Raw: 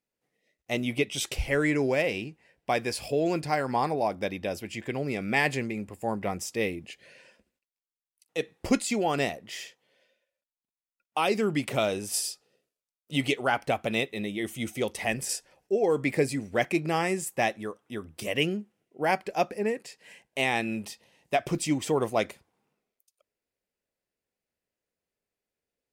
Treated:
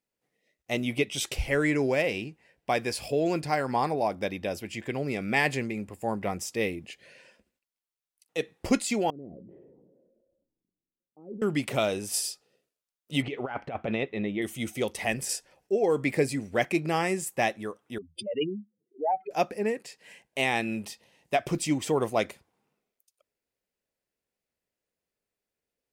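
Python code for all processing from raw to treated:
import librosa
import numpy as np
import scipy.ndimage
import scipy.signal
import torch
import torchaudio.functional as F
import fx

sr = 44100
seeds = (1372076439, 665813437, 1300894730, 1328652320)

y = fx.chain(x, sr, fx.ladder_lowpass(hz=410.0, resonance_pct=40),
    fx.comb_fb(f0_hz=180.0, decay_s=0.28, harmonics='odd', damping=0.0, mix_pct=60),
    fx.sustainer(db_per_s=30.0), at=(9.1, 11.42))
y = fx.chain(y, sr, fx.lowpass(hz=2200.0, slope=12),
    fx.over_compress(threshold_db=-29.0, ratio=-0.5), at=(13.22, 14.42))
y = fx.chain(y, sr, fx.spec_expand(power=3.8),
    fx.highpass(hz=260.0, slope=6),
    fx.peak_eq(hz=3600.0, db=14.0, octaves=0.44), at=(17.98, 19.31))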